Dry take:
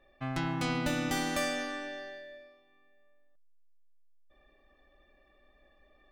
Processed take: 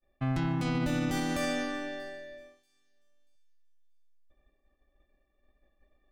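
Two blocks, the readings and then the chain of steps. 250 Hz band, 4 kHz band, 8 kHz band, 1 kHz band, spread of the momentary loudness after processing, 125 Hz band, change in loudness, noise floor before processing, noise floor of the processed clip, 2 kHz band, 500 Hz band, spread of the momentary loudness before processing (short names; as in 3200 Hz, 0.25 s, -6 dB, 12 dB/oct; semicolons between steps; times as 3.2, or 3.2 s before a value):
+3.5 dB, -2.5 dB, -3.0 dB, -1.0 dB, 13 LU, +5.5 dB, +1.5 dB, -66 dBFS, -75 dBFS, -1.5 dB, +1.0 dB, 14 LU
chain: expander -54 dBFS; low shelf 340 Hz +9.5 dB; limiter -21.5 dBFS, peak gain reduction 7.5 dB; thin delay 0.635 s, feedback 31%, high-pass 4200 Hz, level -23 dB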